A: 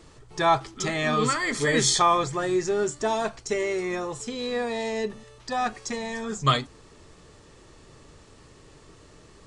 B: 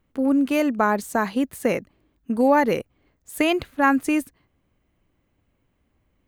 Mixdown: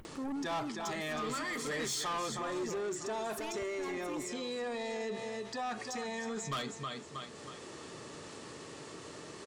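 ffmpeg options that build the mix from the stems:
ffmpeg -i stem1.wav -i stem2.wav -filter_complex "[0:a]highpass=180,adelay=50,volume=1dB,asplit=2[link_01][link_02];[link_02]volume=-11dB[link_03];[1:a]asoftclip=type=tanh:threshold=-21dB,aphaser=in_gain=1:out_gain=1:delay=1.3:decay=0.52:speed=1.9:type=triangular,volume=-9.5dB[link_04];[link_03]aecho=0:1:317|634|951|1268:1|0.28|0.0784|0.022[link_05];[link_01][link_04][link_05]amix=inputs=3:normalize=0,acompressor=mode=upward:threshold=-40dB:ratio=2.5,asoftclip=type=tanh:threshold=-21.5dB,alimiter=level_in=8dB:limit=-24dB:level=0:latency=1:release=60,volume=-8dB" out.wav

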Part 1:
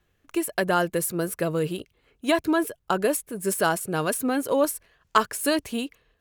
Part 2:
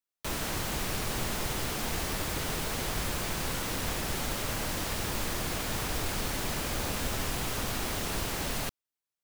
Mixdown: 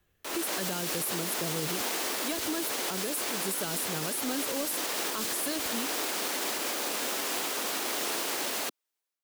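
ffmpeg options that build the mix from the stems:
ffmpeg -i stem1.wav -i stem2.wav -filter_complex "[0:a]acontrast=69,highshelf=frequency=10000:gain=11,volume=-10dB[link_01];[1:a]highpass=frequency=300:width=0.5412,highpass=frequency=300:width=1.3066,dynaudnorm=framelen=250:gausssize=3:maxgain=11dB,volume=-5dB[link_02];[link_01][link_02]amix=inputs=2:normalize=0,acrossover=split=310|3000[link_03][link_04][link_05];[link_04]acompressor=threshold=-31dB:ratio=6[link_06];[link_03][link_06][link_05]amix=inputs=3:normalize=0,alimiter=limit=-22dB:level=0:latency=1:release=51" out.wav

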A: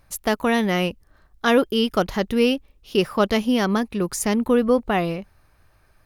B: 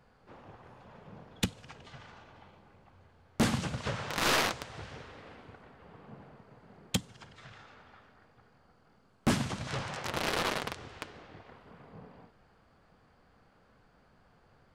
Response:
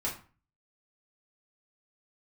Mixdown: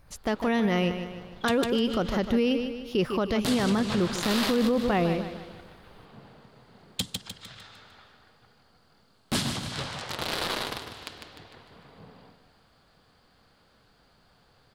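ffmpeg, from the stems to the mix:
-filter_complex "[0:a]acrossover=split=6500[link_01][link_02];[link_02]acompressor=threshold=-52dB:ratio=4:attack=1:release=60[link_03];[link_01][link_03]amix=inputs=2:normalize=0,lowshelf=frequency=500:gain=3.5,volume=-2.5dB,asplit=2[link_04][link_05];[link_05]volume=-12.5dB[link_06];[1:a]equalizer=frequency=4200:width=0.72:gain=7,aexciter=amount=1.5:drive=6.3:freq=3400,adynamicequalizer=threshold=0.00708:dfrequency=2200:dqfactor=0.7:tfrequency=2200:tqfactor=0.7:attack=5:release=100:ratio=0.375:range=3:mode=cutabove:tftype=highshelf,adelay=50,volume=0dB,asplit=2[link_07][link_08];[link_08]volume=-10dB[link_09];[link_06][link_09]amix=inputs=2:normalize=0,aecho=0:1:151|302|453|604|755|906:1|0.46|0.212|0.0973|0.0448|0.0206[link_10];[link_04][link_07][link_10]amix=inputs=3:normalize=0,alimiter=limit=-16dB:level=0:latency=1:release=31"

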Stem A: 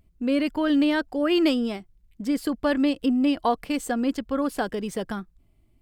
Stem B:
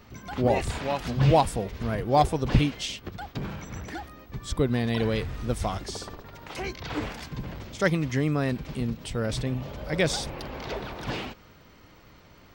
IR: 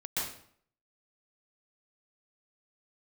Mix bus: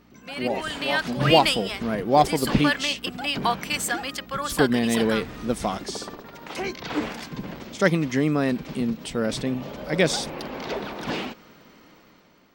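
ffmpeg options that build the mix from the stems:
-filter_complex "[0:a]highpass=1400,aeval=exprs='val(0)+0.00316*(sin(2*PI*60*n/s)+sin(2*PI*2*60*n/s)/2+sin(2*PI*3*60*n/s)/3+sin(2*PI*4*60*n/s)/4+sin(2*PI*5*60*n/s)/5)':channel_layout=same,volume=0dB[link_01];[1:a]volume=-6dB[link_02];[link_01][link_02]amix=inputs=2:normalize=0,dynaudnorm=framelen=350:gausssize=5:maxgain=9.5dB,lowshelf=frequency=140:width_type=q:width=1.5:gain=-11"

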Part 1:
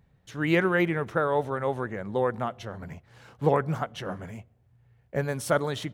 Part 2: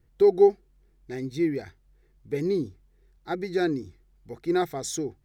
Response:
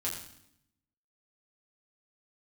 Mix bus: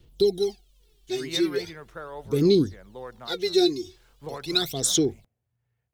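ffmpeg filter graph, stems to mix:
-filter_complex "[0:a]highshelf=frequency=4200:gain=6.5,adelay=800,volume=-12.5dB[link_01];[1:a]highshelf=frequency=2400:width_type=q:width=3:gain=9.5,aphaser=in_gain=1:out_gain=1:delay=2.8:decay=0.77:speed=0.4:type=sinusoidal,volume=-0.5dB[link_02];[link_01][link_02]amix=inputs=2:normalize=0,acrossover=split=380|3000[link_03][link_04][link_05];[link_04]acompressor=threshold=-28dB:ratio=3[link_06];[link_03][link_06][link_05]amix=inputs=3:normalize=0,lowshelf=frequency=330:gain=-4.5,bandreject=frequency=800:width=25"

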